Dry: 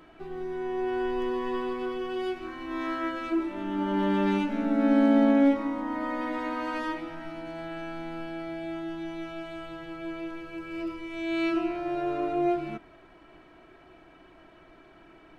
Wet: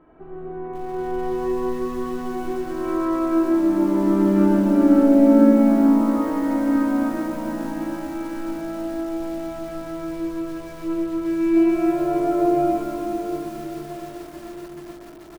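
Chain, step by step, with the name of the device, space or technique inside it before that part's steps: cave (echo 0.263 s -10.5 dB; reverb RT60 4.8 s, pre-delay 41 ms, DRR -6 dB); LPF 1100 Hz 12 dB/oct; lo-fi delay 0.437 s, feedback 80%, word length 6-bit, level -12 dB

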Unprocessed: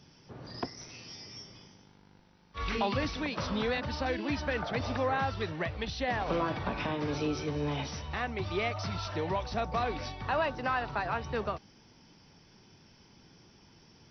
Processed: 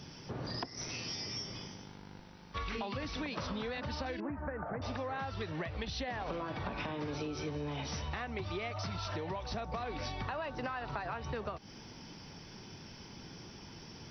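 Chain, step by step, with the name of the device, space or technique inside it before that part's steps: serial compression, peaks first (compressor, threshold -39 dBFS, peak gain reduction 13 dB; compressor 2.5:1, threshold -46 dBFS, peak gain reduction 7.5 dB); 4.2–4.82 inverse Chebyshev low-pass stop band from 3300 Hz, stop band 40 dB; gain +8.5 dB

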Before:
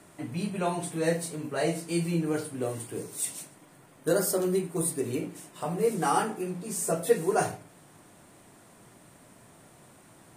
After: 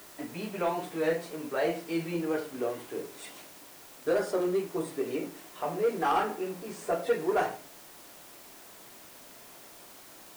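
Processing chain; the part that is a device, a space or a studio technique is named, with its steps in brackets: tape answering machine (BPF 320–3000 Hz; soft clip -21 dBFS, distortion -14 dB; wow and flutter; white noise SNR 19 dB); gain +2 dB

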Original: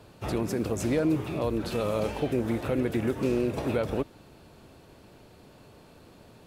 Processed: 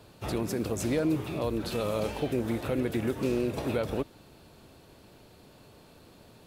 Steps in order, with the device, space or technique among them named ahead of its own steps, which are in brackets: presence and air boost (bell 3900 Hz +3 dB 0.77 oct; high shelf 9200 Hz +6.5 dB); gain -2 dB

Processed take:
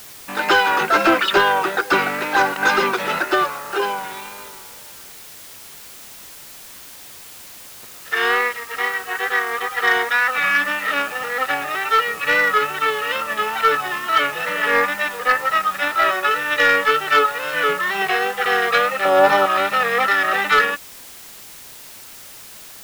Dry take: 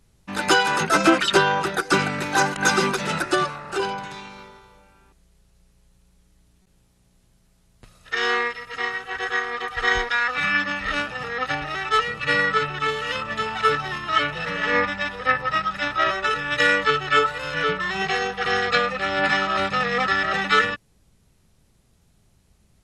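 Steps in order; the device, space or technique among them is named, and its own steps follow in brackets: tape answering machine (BPF 350–3300 Hz; soft clip -12 dBFS, distortion -18 dB; wow and flutter; white noise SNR 19 dB); 19.05–19.46 graphic EQ 125/500/1000/2000 Hz +9/+9/+6/-7 dB; gain +5.5 dB

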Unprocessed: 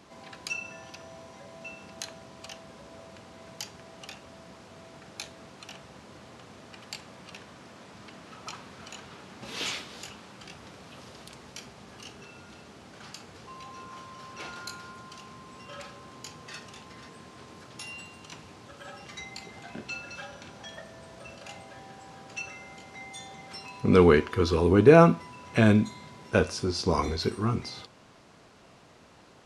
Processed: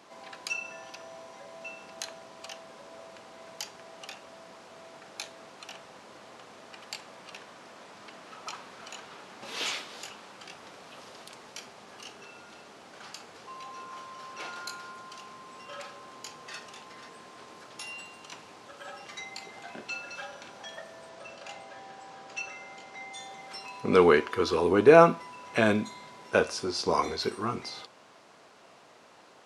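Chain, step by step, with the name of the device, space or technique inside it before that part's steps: 21.09–23.19 LPF 8200 Hz 12 dB/oct; filter by subtraction (in parallel: LPF 680 Hz 12 dB/oct + phase invert)

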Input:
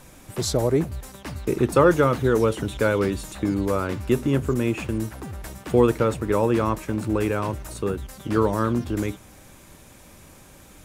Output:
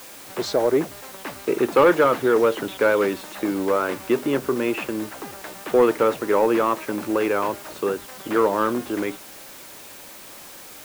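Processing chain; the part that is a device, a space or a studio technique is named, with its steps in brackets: tape answering machine (BPF 360–3200 Hz; soft clip -13.5 dBFS, distortion -17 dB; wow and flutter; white noise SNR 20 dB); gain +5.5 dB

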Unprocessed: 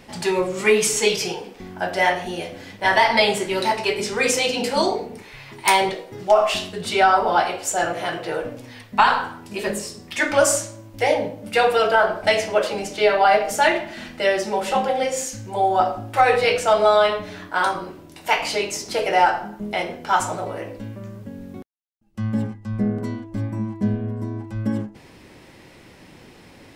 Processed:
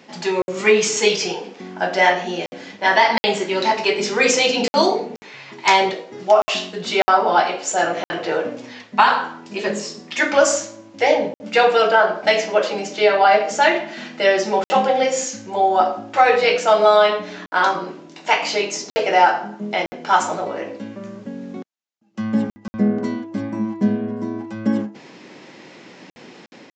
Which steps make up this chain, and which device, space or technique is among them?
call with lost packets (HPF 170 Hz 24 dB/oct; downsampling 16000 Hz; AGC gain up to 5.5 dB; packet loss packets of 60 ms)

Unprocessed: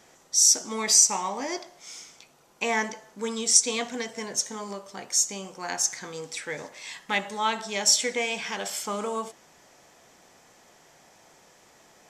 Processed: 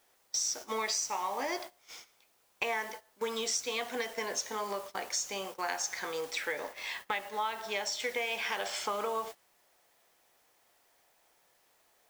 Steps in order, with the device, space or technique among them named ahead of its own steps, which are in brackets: baby monitor (BPF 430–4100 Hz; compressor 10:1, threshold -34 dBFS, peak gain reduction 14 dB; white noise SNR 16 dB; gate -46 dBFS, range -18 dB); 6.52–8 bell 9000 Hz -3 dB 2.6 oct; gain +4 dB

